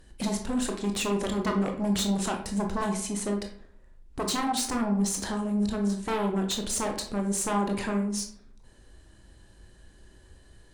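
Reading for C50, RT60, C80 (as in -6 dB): 8.0 dB, 0.55 s, 11.5 dB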